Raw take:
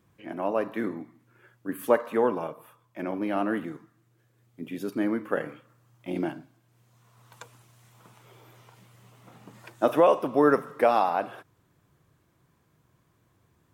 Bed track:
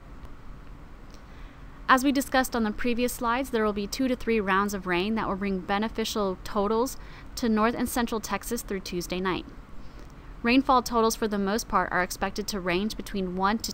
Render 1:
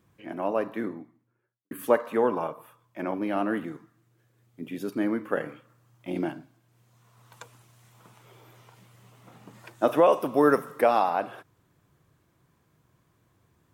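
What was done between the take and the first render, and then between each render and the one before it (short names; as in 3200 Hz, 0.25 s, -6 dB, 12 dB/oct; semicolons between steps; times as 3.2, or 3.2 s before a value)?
0.53–1.71 studio fade out; 2.32–3.14 dynamic EQ 1000 Hz, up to +5 dB, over -45 dBFS, Q 1.2; 10.12–10.81 high shelf 7400 Hz +11.5 dB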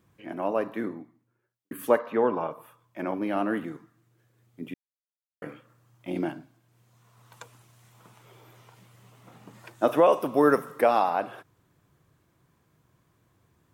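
1.99–2.51 running mean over 5 samples; 4.74–5.42 mute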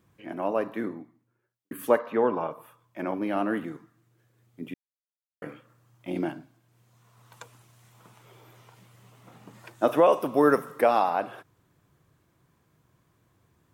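nothing audible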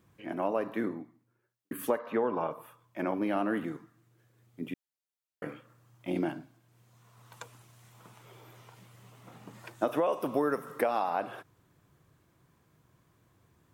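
compressor 6:1, threshold -25 dBFS, peak gain reduction 10 dB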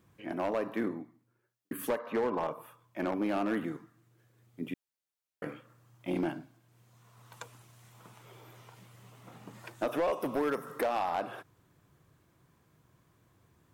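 hard clip -25 dBFS, distortion -13 dB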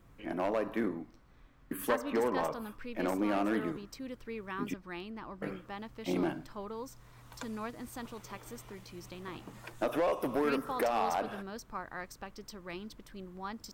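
add bed track -16.5 dB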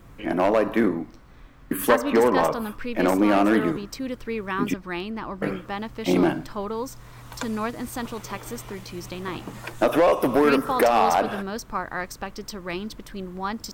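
gain +12 dB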